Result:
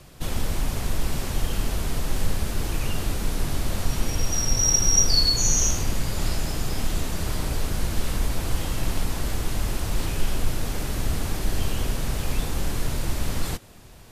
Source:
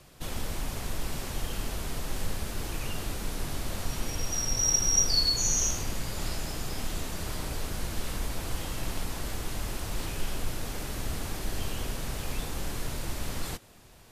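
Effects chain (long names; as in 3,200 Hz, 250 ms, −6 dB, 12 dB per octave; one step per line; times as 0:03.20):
low-shelf EQ 260 Hz +4.5 dB
level +4.5 dB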